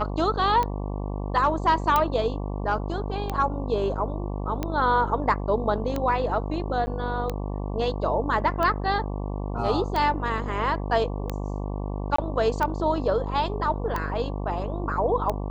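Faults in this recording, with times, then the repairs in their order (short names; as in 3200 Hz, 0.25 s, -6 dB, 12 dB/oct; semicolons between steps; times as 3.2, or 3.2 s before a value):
buzz 50 Hz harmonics 23 -30 dBFS
tick 45 rpm -14 dBFS
1.96 pop
6.86–6.87 gap 10 ms
12.16–12.18 gap 24 ms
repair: de-click; de-hum 50 Hz, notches 23; interpolate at 6.86, 10 ms; interpolate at 12.16, 24 ms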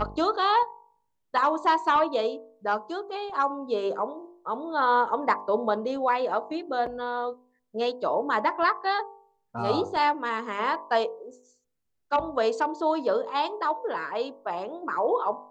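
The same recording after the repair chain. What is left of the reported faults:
none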